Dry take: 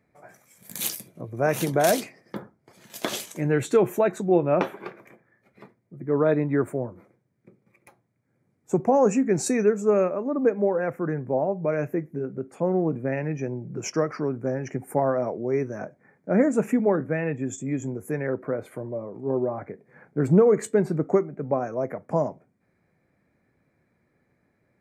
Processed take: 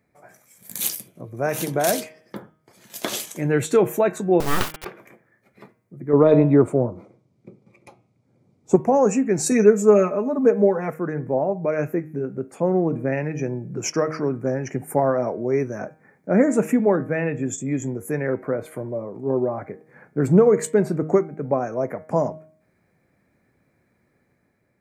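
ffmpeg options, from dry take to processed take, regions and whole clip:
ffmpeg -i in.wav -filter_complex "[0:a]asettb=1/sr,asplit=3[link_01][link_02][link_03];[link_01]atrim=end=4.404[link_04];[link_02]atrim=start=4.4:end=4.85,asetpts=PTS-STARTPTS,afade=type=in:duration=0.004:curve=qsin,afade=type=out:start_time=0.446:duration=0.004:curve=qsin,highshelf=frequency=3200:gain=9,aeval=exprs='abs(val(0))':channel_layout=same,acrusher=bits=3:dc=4:mix=0:aa=0.000001[link_05];[link_03]atrim=start=4.846[link_06];[link_04][link_05]acrossfade=duration=0.004:curve1=hsin:curve2=qsin[link_07];[link_07][link_06]acrossfade=duration=0.004:curve1=qsin:curve2=hsin,asettb=1/sr,asplit=3[link_08][link_09][link_10];[link_08]atrim=end=6.134[link_11];[link_09]atrim=start=6.13:end=8.76,asetpts=PTS-STARTPTS,afade=type=in:duration=0.004:curve=qsin,afade=type=out:start_time=2.626:duration=0.004:curve=qsin,lowpass=5300,equalizer=frequency=1700:width_type=o:width=0.64:gain=-15,acontrast=72[link_12];[link_10]atrim=start=8.756[link_13];[link_11][link_12]acrossfade=duration=0.004:curve1=hsin:curve2=qsin[link_14];[link_14][link_13]acrossfade=duration=0.004:curve1=qsin:curve2=hsin,asettb=1/sr,asplit=3[link_15][link_16][link_17];[link_15]atrim=end=9.514[link_18];[link_16]atrim=start=9.51:end=10.94,asetpts=PTS-STARTPTS,afade=type=in:duration=0.004:curve=qsin,afade=type=out:start_time=1.426:duration=0.004:curve=qsin,highshelf=frequency=5900:gain=7,aecho=1:1:4.7:0.88,atrim=end_sample=63063[link_19];[link_17]atrim=start=10.936[link_20];[link_18][link_19]acrossfade=duration=0.004:curve1=hsin:curve2=qsin[link_21];[link_21][link_20]acrossfade=duration=0.004:curve1=qsin:curve2=hsin,highshelf=frequency=5900:gain=5.5,dynaudnorm=framelen=710:gausssize=3:maxgain=3.5dB,bandreject=frequency=156.8:width_type=h:width=4,bandreject=frequency=313.6:width_type=h:width=4,bandreject=frequency=470.4:width_type=h:width=4,bandreject=frequency=627.2:width_type=h:width=4,bandreject=frequency=784:width_type=h:width=4,bandreject=frequency=940.8:width_type=h:width=4,bandreject=frequency=1097.6:width_type=h:width=4,bandreject=frequency=1254.4:width_type=h:width=4,bandreject=frequency=1411.2:width_type=h:width=4,bandreject=frequency=1568:width_type=h:width=4,bandreject=frequency=1724.8:width_type=h:width=4,bandreject=frequency=1881.6:width_type=h:width=4,bandreject=frequency=2038.4:width_type=h:width=4,bandreject=frequency=2195.2:width_type=h:width=4,bandreject=frequency=2352:width_type=h:width=4,bandreject=frequency=2508.8:width_type=h:width=4,bandreject=frequency=2665.6:width_type=h:width=4,bandreject=frequency=2822.4:width_type=h:width=4,bandreject=frequency=2979.2:width_type=h:width=4,bandreject=frequency=3136:width_type=h:width=4,bandreject=frequency=3292.8:width_type=h:width=4,bandreject=frequency=3449.6:width_type=h:width=4" out.wav

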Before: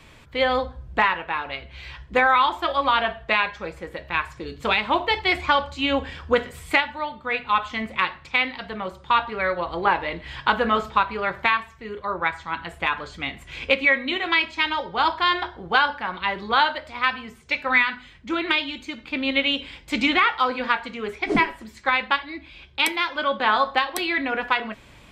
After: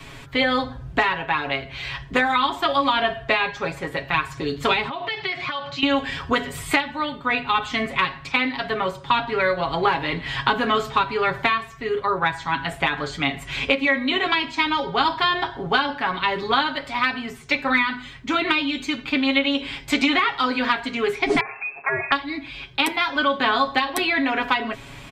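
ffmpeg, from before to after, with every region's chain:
ffmpeg -i in.wav -filter_complex "[0:a]asettb=1/sr,asplit=3[link_01][link_02][link_03];[link_01]atrim=end=4.884[link_04];[link_02]atrim=start=4.88:end=5.83,asetpts=PTS-STARTPTS,afade=type=in:duration=0.004:curve=qsin,afade=type=out:start_time=0.946:duration=0.004:curve=qsin,acompressor=threshold=-30dB:ratio=8:attack=3.2:release=140:knee=1:detection=peak,highpass=frequency=110:width=0.5412,highpass=frequency=110:width=1.3066,equalizer=frequency=270:width_type=q:width=4:gain=-9,equalizer=frequency=490:width_type=q:width=4:gain=-8,equalizer=frequency=900:width_type=q:width=4:gain=-8,lowpass=frequency=5400:width=0.5412,lowpass=frequency=5400:width=1.3066[link_05];[link_03]atrim=start=5.826[link_06];[link_04][link_05]acrossfade=duration=0.004:curve1=hsin:curve2=qsin[link_07];[link_07][link_06]acrossfade=duration=0.004:curve1=qsin:curve2=hsin,asettb=1/sr,asplit=3[link_08][link_09][link_10];[link_08]atrim=end=21.404[link_11];[link_09]atrim=start=21.4:end=22.12,asetpts=PTS-STARTPTS,afade=type=in:duration=0.004:curve=qsin,afade=type=out:start_time=0.716:duration=0.004:curve=qsin,acompressor=threshold=-26dB:ratio=2.5:attack=3.2:release=140:knee=1:detection=peak,lowpass=frequency=2300:width_type=q:width=0.5098,lowpass=frequency=2300:width_type=q:width=0.6013,lowpass=frequency=2300:width_type=q:width=0.9,lowpass=frequency=2300:width_type=q:width=2.563,afreqshift=-2700[link_12];[link_10]atrim=start=22.116[link_13];[link_11][link_12]acrossfade=duration=0.004:curve1=hsin:curve2=qsin[link_14];[link_14][link_13]acrossfade=duration=0.004:curve1=qsin:curve2=hsin,bandreject=frequency=530:width=12,aecho=1:1:7.3:0.8,acrossover=split=450|1300|3400[link_15][link_16][link_17][link_18];[link_15]acompressor=threshold=-31dB:ratio=4[link_19];[link_16]acompressor=threshold=-33dB:ratio=4[link_20];[link_17]acompressor=threshold=-33dB:ratio=4[link_21];[link_18]acompressor=threshold=-37dB:ratio=4[link_22];[link_19][link_20][link_21][link_22]amix=inputs=4:normalize=0,volume=7dB" out.wav

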